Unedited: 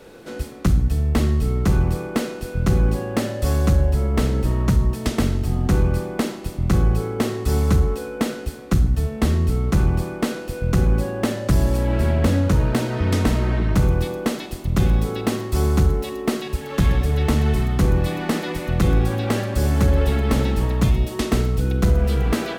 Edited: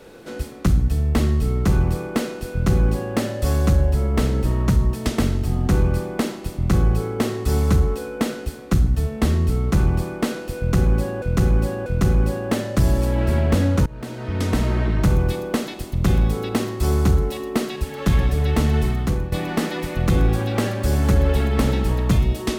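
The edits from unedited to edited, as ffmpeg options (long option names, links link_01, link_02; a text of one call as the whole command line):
ffmpeg -i in.wav -filter_complex "[0:a]asplit=5[link_01][link_02][link_03][link_04][link_05];[link_01]atrim=end=11.222[link_06];[link_02]atrim=start=10.578:end=11.222[link_07];[link_03]atrim=start=10.578:end=12.58,asetpts=PTS-STARTPTS,afade=type=out:start_time=1.998:duration=0.004:curve=hsin:silence=0.0668344[link_08];[link_04]atrim=start=12.58:end=18.04,asetpts=PTS-STARTPTS,afade=type=in:duration=0.84:silence=0.0668344,afade=type=out:start_time=4.87:duration=0.59:curve=qsin:silence=0.237137[link_09];[link_05]atrim=start=18.04,asetpts=PTS-STARTPTS,afade=type=in:duration=0.004:curve=hsin:silence=0.237137[link_10];[link_06][link_07]acrossfade=duration=0.004:curve1=hsin:curve2=hsin[link_11];[link_08][link_09][link_10]concat=n=3:v=0:a=1[link_12];[link_11][link_12]acrossfade=duration=0.004:curve1=hsin:curve2=hsin" out.wav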